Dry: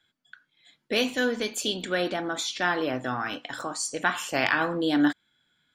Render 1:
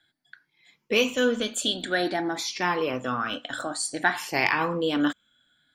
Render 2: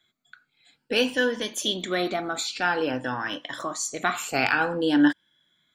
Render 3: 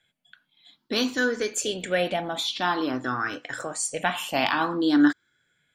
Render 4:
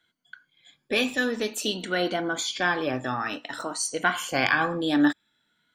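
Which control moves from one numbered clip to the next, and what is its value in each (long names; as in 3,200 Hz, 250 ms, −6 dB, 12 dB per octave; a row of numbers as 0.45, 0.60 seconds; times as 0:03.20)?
rippled gain that drifts along the octave scale, ripples per octave: 0.8, 1.2, 0.5, 1.9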